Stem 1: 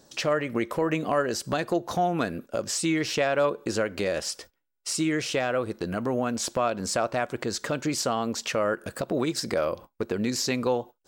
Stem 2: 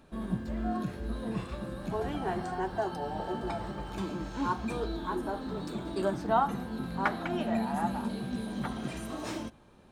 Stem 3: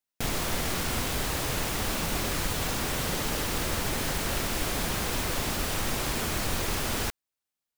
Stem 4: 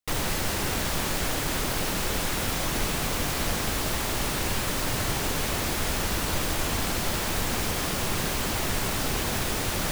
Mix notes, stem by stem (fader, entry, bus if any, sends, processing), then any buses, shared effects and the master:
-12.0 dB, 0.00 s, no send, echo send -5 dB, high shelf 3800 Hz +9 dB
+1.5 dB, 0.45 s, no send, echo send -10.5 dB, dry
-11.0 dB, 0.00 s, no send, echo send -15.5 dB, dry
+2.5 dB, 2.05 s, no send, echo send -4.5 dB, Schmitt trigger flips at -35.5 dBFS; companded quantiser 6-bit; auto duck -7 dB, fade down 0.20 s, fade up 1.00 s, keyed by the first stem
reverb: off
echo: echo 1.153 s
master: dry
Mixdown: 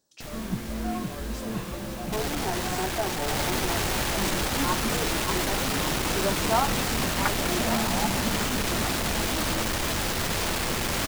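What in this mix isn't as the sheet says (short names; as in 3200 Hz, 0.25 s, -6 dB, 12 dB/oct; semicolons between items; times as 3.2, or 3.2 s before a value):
stem 1 -12.0 dB -> -20.5 dB; stem 2: entry 0.45 s -> 0.20 s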